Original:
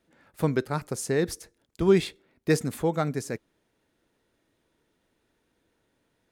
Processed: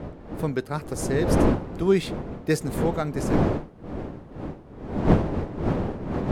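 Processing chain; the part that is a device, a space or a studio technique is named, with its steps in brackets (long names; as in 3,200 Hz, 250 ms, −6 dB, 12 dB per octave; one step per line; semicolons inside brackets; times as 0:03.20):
smartphone video outdoors (wind on the microphone 370 Hz −24 dBFS; automatic gain control gain up to 4 dB; level −4 dB; AAC 96 kbit/s 44,100 Hz)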